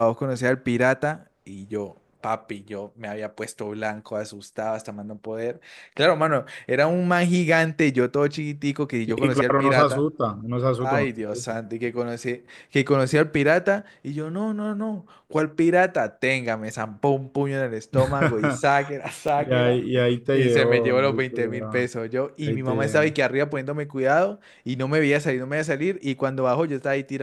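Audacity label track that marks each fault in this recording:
19.280000	19.280000	gap 4.1 ms

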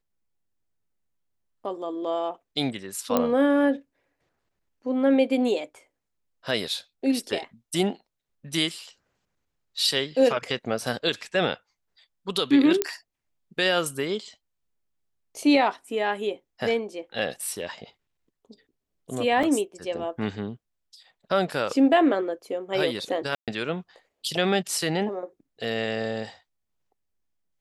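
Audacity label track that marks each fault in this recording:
3.170000	3.170000	pop -8 dBFS
12.820000	12.820000	pop -6 dBFS
19.430000	19.430000	gap 4.7 ms
23.350000	23.480000	gap 0.127 s

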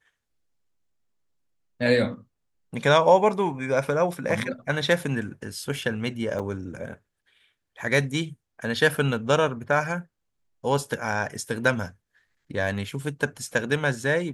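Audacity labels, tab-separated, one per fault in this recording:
6.390000	6.400000	gap 5.6 ms

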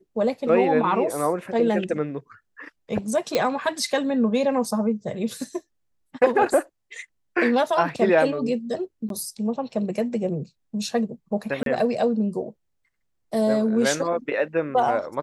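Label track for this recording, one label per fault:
3.350000	3.350000	pop -8 dBFS
9.090000	9.100000	gap 12 ms
11.630000	11.660000	gap 32 ms

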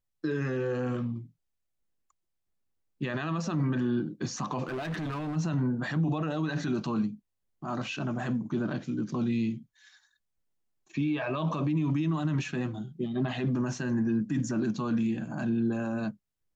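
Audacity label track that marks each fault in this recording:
4.670000	5.370000	clipped -30.5 dBFS

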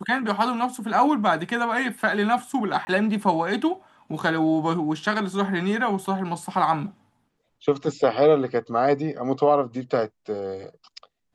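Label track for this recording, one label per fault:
2.850000	2.870000	gap 20 ms

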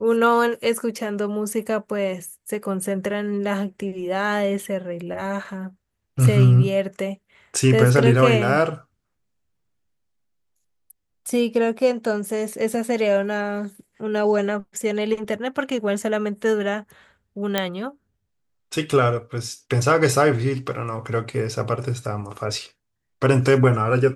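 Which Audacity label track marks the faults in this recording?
17.580000	17.580000	pop -6 dBFS

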